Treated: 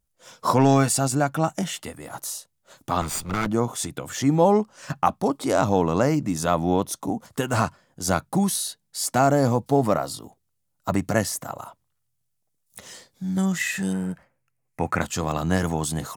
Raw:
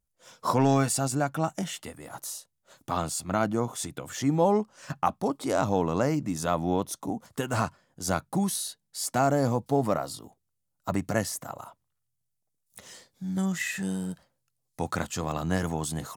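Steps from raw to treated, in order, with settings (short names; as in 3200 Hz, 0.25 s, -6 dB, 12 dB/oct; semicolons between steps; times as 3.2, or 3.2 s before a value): 3.01–3.47 minimum comb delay 0.83 ms; 13.93–15.01 resonant high shelf 2900 Hz -7.5 dB, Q 3; gain +5 dB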